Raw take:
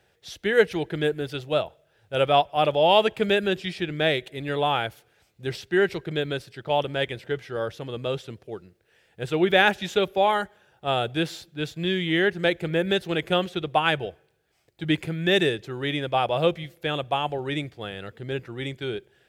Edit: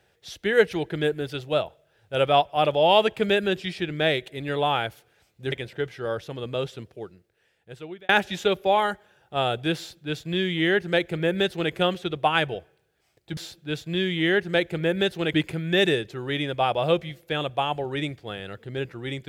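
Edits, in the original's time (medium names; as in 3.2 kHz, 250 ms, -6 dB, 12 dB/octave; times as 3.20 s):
5.52–7.03 s: delete
8.37–9.60 s: fade out
11.27–13.24 s: copy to 14.88 s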